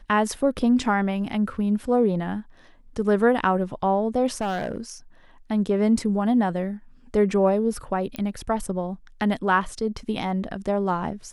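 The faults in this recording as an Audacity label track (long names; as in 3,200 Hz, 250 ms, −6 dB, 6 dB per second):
4.410000	4.900000	clipping −22.5 dBFS
8.160000	8.160000	click −14 dBFS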